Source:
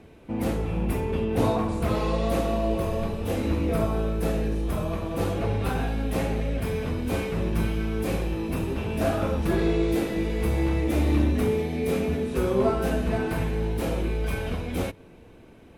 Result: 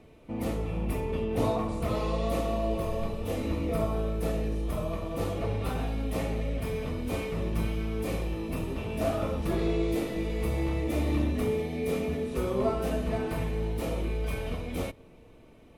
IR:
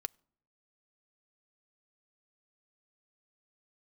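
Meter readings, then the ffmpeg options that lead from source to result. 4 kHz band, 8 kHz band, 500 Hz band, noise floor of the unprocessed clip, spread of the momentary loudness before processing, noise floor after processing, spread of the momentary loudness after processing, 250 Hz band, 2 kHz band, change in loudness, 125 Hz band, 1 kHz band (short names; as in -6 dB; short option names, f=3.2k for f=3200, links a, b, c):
-4.0 dB, -4.0 dB, -4.0 dB, -49 dBFS, 5 LU, -53 dBFS, 5 LU, -5.0 dB, -5.5 dB, -4.5 dB, -4.5 dB, -4.5 dB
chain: -filter_complex "[0:a]bandreject=f=1.6k:w=7[a];[1:a]atrim=start_sample=2205,asetrate=57330,aresample=44100[b];[a][b]afir=irnorm=-1:irlink=0"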